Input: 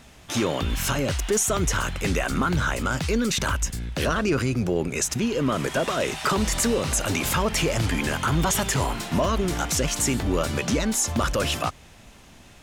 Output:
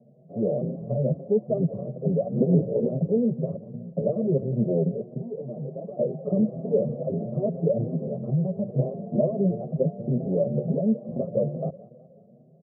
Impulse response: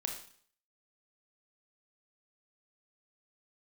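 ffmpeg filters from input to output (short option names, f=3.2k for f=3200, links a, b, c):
-filter_complex "[0:a]equalizer=f=210:t=o:w=1.9:g=7.5,aecho=1:1:1.7:0.96,asettb=1/sr,asplit=3[a][b][c];[a]atrim=end=5.164[d];[b]atrim=start=5.16:end=5.99,asetpts=PTS-STARTPTS,afade=t=in:d=0.004:c=qsin,afade=t=out:st=0.826:d=0.004:c=qsin,volume=25.5dB,asoftclip=hard,volume=-25.5dB[e];[c]atrim=start=5.986[f];[d][e]acrossfade=d=0.004:c1=hsin:c2=qsin[g];[g][f]acrossfade=d=0.004:c1=qsin:c2=hsin,asettb=1/sr,asplit=3[h][i][j];[h]atrim=end=7.934[k];[i]atrim=start=7.93:end=8.78,asetpts=PTS-STARTPTS,afade=t=in:d=0.004:c=qsin,afade=t=out:st=0.846:d=0.004:c=qsin,acompressor=threshold=-17dB:ratio=6[l];[j]atrim=start=8.776[m];[k][l]acrossfade=d=0.004:c1=hsin:c2=qsin[n];[n][m]acrossfade=d=0.004:c1=qsin:c2=hsin,asoftclip=type=tanh:threshold=-12dB,aeval=exprs='0.251*(cos(1*acos(clip(val(0)/0.251,-1,1)))-cos(1*PI/2))+0.0282*(cos(2*acos(clip(val(0)/0.251,-1,1)))-cos(2*PI/2))+0.0112*(cos(7*acos(clip(val(0)/0.251,-1,1)))-cos(7*PI/2))':c=same,asettb=1/sr,asplit=3[o][p][q];[o]atrim=end=2.404[r];[p]atrim=start=2.4:end=2.88,asetpts=PTS-STARTPTS,afade=t=in:d=0.004:c=qsin,afade=t=out:st=0.476:d=0.004:c=qsin,lowpass=f=440:t=q:w=4.9[s];[q]atrim=start=2.876[t];[r][s]acrossfade=d=0.004:c1=hsin:c2=qsin[u];[u][t]acrossfade=d=0.004:c1=qsin:c2=hsin,aeval=exprs='0.447*(cos(1*acos(clip(val(0)/0.447,-1,1)))-cos(1*PI/2))+0.126*(cos(2*acos(clip(val(0)/0.447,-1,1)))-cos(2*PI/2))+0.0251*(cos(6*acos(clip(val(0)/0.447,-1,1)))-cos(6*PI/2))+0.0447*(cos(8*acos(clip(val(0)/0.447,-1,1)))-cos(8*PI/2))':c=same,asuperpass=centerf=290:order=12:qfactor=0.57,aecho=1:1:185|370|555|740|925:0.119|0.0642|0.0347|0.0187|0.0101,asplit=2[v][w];[w]adelay=6.6,afreqshift=2.2[x];[v][x]amix=inputs=2:normalize=1"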